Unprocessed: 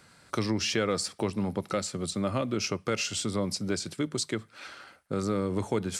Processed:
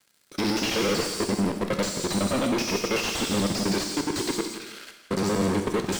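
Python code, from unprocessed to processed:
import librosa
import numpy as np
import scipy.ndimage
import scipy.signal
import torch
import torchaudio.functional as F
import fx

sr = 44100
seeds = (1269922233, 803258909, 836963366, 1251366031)

p1 = fx.local_reverse(x, sr, ms=63.0)
p2 = scipy.signal.sosfilt(scipy.signal.cheby1(2, 1.0, 240.0, 'highpass', fs=sr, output='sos'), p1)
p3 = fx.peak_eq(p2, sr, hz=1000.0, db=-13.0, octaves=1.2)
p4 = fx.leveller(p3, sr, passes=5)
p5 = fx.level_steps(p4, sr, step_db=23)
p6 = fx.tilt_shelf(p5, sr, db=-3.0, hz=780.0)
p7 = p6 + fx.echo_feedback(p6, sr, ms=170, feedback_pct=35, wet_db=-14, dry=0)
p8 = fx.rev_gated(p7, sr, seeds[0], gate_ms=410, shape='falling', drr_db=6.0)
y = fx.slew_limit(p8, sr, full_power_hz=160.0)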